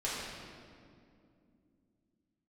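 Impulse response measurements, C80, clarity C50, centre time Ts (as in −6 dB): 0.0 dB, −2.0 dB, 125 ms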